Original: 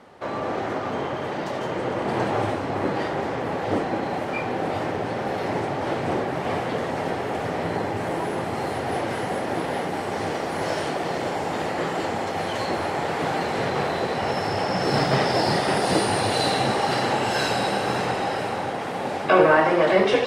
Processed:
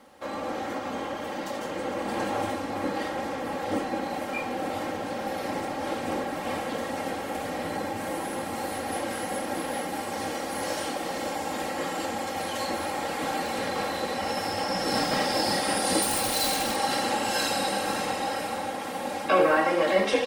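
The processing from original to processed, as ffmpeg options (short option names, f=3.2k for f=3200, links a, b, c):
-filter_complex "[0:a]asettb=1/sr,asplit=3[a][b][c];[a]atrim=end=16.024[d];[b]atrim=start=16.02:end=16.76,asetpts=PTS-STARTPTS,afade=t=in:d=0.004:c=qsin,afade=t=out:st=0.736:d=0.004:c=qsin,aeval=exprs='0.119*(abs(mod(val(0)/0.119+3,4)-2)-1)':c=same[e];[c]atrim=start=16.756[f];[d][e]acrossfade=d=0.004:c1=hsin:c2=qsin[g];[g][f]acrossfade=d=0.004:c1=qsin:c2=hsin,aemphasis=mode=production:type=50fm,aecho=1:1:3.7:0.7,volume=-6.5dB"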